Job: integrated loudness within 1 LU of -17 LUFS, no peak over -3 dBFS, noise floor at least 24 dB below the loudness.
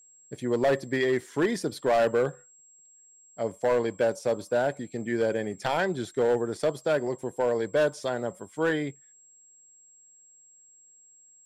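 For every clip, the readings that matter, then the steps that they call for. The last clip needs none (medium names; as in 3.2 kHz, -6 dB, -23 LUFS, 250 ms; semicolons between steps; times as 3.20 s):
clipped samples 1.3%; clipping level -18.0 dBFS; steady tone 7.6 kHz; tone level -54 dBFS; loudness -27.5 LUFS; peak level -18.0 dBFS; loudness target -17.0 LUFS
-> clip repair -18 dBFS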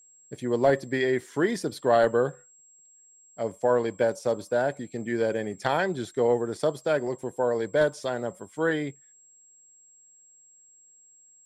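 clipped samples 0.0%; steady tone 7.6 kHz; tone level -54 dBFS
-> band-stop 7.6 kHz, Q 30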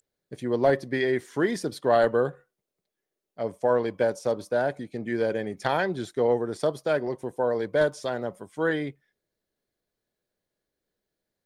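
steady tone not found; loudness -27.0 LUFS; peak level -9.0 dBFS; loudness target -17.0 LUFS
-> trim +10 dB; peak limiter -3 dBFS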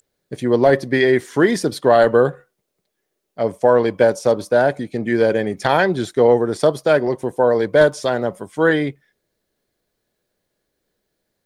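loudness -17.5 LUFS; peak level -3.0 dBFS; noise floor -76 dBFS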